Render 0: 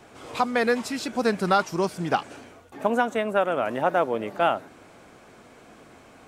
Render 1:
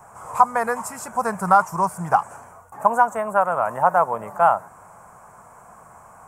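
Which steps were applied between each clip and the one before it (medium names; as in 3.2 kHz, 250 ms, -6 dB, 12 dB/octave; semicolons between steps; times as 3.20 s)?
FFT filter 180 Hz 0 dB, 290 Hz -17 dB, 1 kHz +11 dB, 3.8 kHz -24 dB, 7.6 kHz +6 dB; trim +2 dB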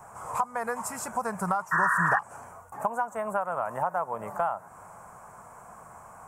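compression 4:1, threshold -25 dBFS, peak gain reduction 14.5 dB; painted sound noise, 1.71–2.19 s, 940–1900 Hz -23 dBFS; trim -1.5 dB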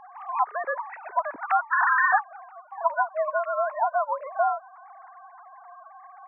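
formants replaced by sine waves; trim +3.5 dB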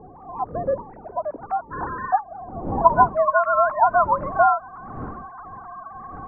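wind noise 280 Hz -41 dBFS; low-pass sweep 500 Hz -> 1.3 kHz, 1.94–3.41 s; trim +3.5 dB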